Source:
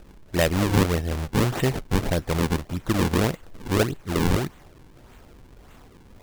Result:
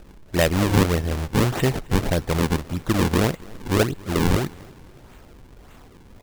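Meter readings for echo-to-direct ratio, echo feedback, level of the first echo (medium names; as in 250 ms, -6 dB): -22.5 dB, 45%, -23.5 dB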